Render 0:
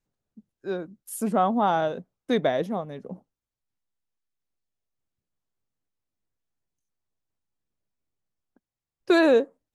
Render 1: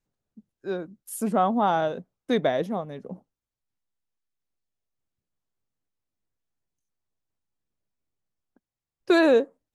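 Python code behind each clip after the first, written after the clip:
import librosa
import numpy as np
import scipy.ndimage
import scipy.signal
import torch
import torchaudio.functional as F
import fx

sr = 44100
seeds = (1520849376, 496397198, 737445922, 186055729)

y = x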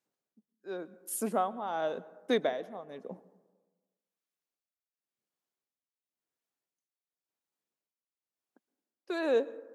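y = scipy.signal.sosfilt(scipy.signal.butter(2, 290.0, 'highpass', fs=sr, output='sos'), x)
y = y * (1.0 - 0.82 / 2.0 + 0.82 / 2.0 * np.cos(2.0 * np.pi * 0.93 * (np.arange(len(y)) / sr)))
y = fx.rev_plate(y, sr, seeds[0], rt60_s=1.3, hf_ratio=0.3, predelay_ms=105, drr_db=19.0)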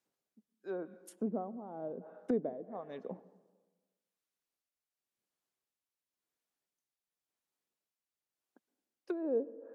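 y = fx.env_lowpass_down(x, sr, base_hz=370.0, full_db=-31.5)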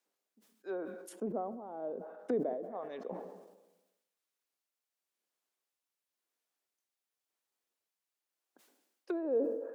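y = scipy.signal.sosfilt(scipy.signal.butter(2, 320.0, 'highpass', fs=sr, output='sos'), x)
y = fx.sustainer(y, sr, db_per_s=52.0)
y = y * 10.0 ** (2.0 / 20.0)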